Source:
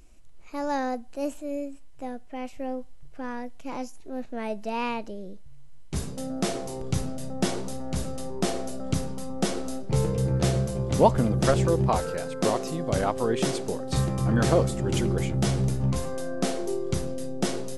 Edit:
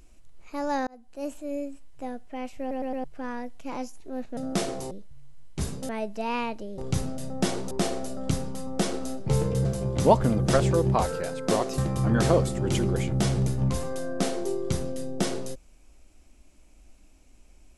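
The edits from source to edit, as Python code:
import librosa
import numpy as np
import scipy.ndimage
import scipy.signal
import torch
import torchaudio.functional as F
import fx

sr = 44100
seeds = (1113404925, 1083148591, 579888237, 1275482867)

y = fx.edit(x, sr, fx.fade_in_span(start_s=0.87, length_s=0.82, curve='qsin'),
    fx.stutter_over(start_s=2.6, slice_s=0.11, count=4),
    fx.swap(start_s=4.37, length_s=0.89, other_s=6.24, other_length_s=0.54),
    fx.cut(start_s=7.71, length_s=0.63),
    fx.cut(start_s=10.28, length_s=0.31),
    fx.cut(start_s=12.72, length_s=1.28), tone=tone)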